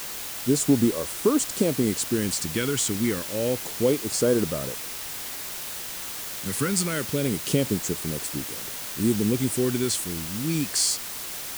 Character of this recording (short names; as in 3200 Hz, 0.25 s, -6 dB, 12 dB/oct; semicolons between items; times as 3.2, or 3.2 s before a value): phasing stages 2, 0.27 Hz, lowest notch 660–2400 Hz; a quantiser's noise floor 6-bit, dither triangular